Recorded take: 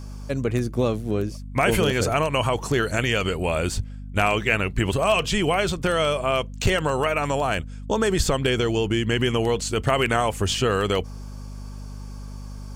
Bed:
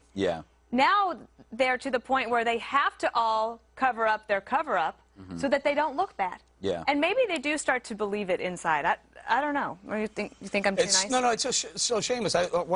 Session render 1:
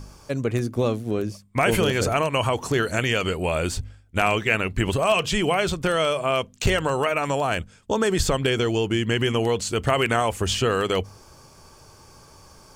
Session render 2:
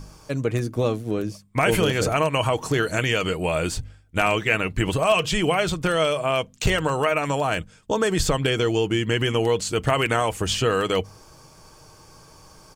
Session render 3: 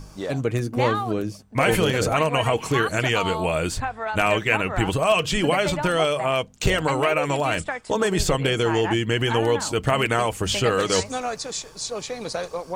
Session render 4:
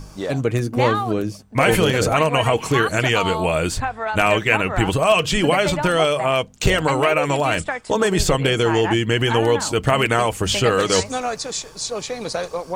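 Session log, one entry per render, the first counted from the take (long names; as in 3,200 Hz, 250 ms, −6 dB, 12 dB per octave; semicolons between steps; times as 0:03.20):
hum removal 50 Hz, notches 5
comb filter 6.4 ms, depth 30%
mix in bed −3.5 dB
level +3.5 dB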